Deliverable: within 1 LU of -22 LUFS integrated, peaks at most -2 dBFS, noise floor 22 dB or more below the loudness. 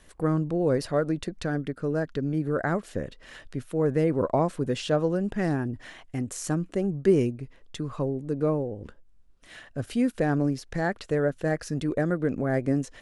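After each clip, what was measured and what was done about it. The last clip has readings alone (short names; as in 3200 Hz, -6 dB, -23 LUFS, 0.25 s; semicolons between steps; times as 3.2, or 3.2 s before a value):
loudness -27.5 LUFS; peak -10.0 dBFS; loudness target -22.0 LUFS
-> gain +5.5 dB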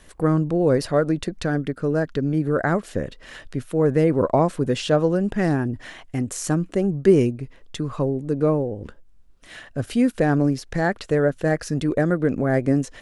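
loudness -22.0 LUFS; peak -5.0 dBFS; noise floor -48 dBFS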